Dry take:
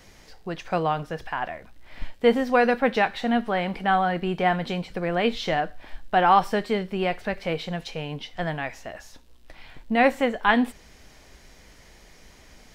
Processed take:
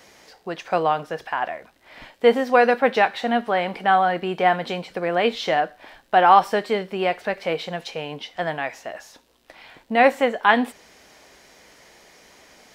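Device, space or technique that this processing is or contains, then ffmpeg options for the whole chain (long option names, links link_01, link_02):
filter by subtraction: -filter_complex "[0:a]asplit=2[link_01][link_02];[link_02]lowpass=550,volume=-1[link_03];[link_01][link_03]amix=inputs=2:normalize=0,volume=2.5dB"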